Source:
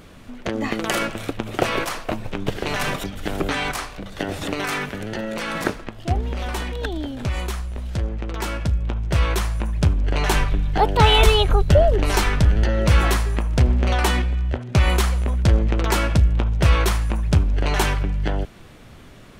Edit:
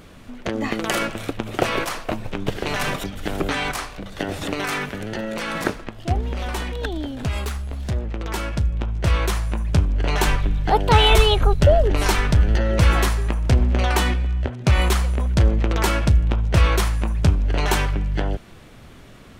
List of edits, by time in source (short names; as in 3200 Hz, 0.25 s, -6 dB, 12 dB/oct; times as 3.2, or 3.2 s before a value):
7.23–8.13 speed 110%